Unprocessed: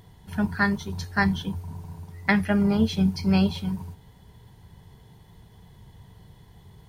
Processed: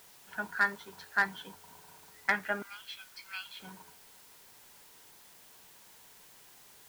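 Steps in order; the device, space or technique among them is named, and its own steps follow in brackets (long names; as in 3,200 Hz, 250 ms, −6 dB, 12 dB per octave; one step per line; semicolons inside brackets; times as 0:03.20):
0:02.62–0:03.60: inverse Chebyshev high-pass filter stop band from 390 Hz, stop band 60 dB
drive-through speaker (band-pass filter 530–3,100 Hz; parametric band 1,500 Hz +8.5 dB 0.3 octaves; hard clipping −11 dBFS, distortion −19 dB; white noise bed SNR 18 dB)
level −5.5 dB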